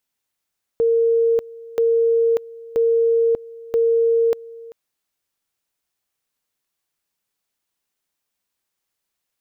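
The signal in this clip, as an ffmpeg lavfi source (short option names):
-f lavfi -i "aevalsrc='pow(10,(-13.5-21*gte(mod(t,0.98),0.59))/20)*sin(2*PI*460*t)':d=3.92:s=44100"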